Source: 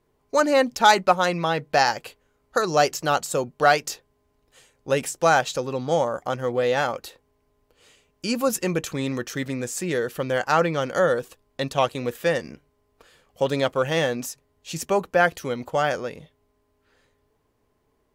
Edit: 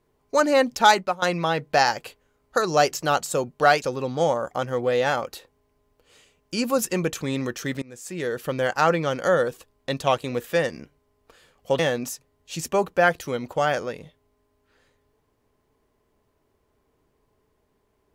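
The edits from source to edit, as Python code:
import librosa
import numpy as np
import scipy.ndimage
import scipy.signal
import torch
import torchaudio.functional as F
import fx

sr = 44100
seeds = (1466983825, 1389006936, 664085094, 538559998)

y = fx.edit(x, sr, fx.fade_out_to(start_s=0.88, length_s=0.34, floor_db=-17.5),
    fx.cut(start_s=3.82, length_s=1.71),
    fx.fade_in_from(start_s=9.53, length_s=0.64, floor_db=-24.0),
    fx.cut(start_s=13.5, length_s=0.46), tone=tone)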